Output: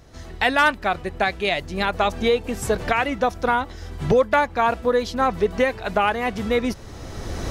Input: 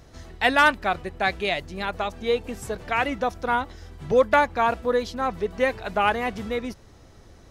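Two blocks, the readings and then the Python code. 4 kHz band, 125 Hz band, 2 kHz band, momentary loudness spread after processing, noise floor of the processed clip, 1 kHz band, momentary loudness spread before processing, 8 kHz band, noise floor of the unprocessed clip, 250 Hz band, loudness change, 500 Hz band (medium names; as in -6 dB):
+2.5 dB, +7.0 dB, +1.5 dB, 13 LU, -39 dBFS, +2.0 dB, 11 LU, +6.0 dB, -50 dBFS, +4.5 dB, +2.5 dB, +3.0 dB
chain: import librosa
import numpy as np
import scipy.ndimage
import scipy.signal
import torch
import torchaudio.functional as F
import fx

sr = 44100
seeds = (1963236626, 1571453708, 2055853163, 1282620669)

y = fx.recorder_agc(x, sr, target_db=-10.0, rise_db_per_s=18.0, max_gain_db=30)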